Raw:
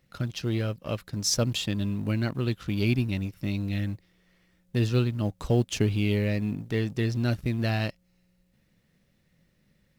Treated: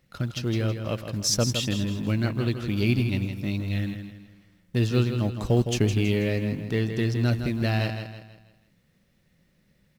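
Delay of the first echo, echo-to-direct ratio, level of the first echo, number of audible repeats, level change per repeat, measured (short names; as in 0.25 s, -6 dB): 0.162 s, -7.0 dB, -8.0 dB, 4, -8.0 dB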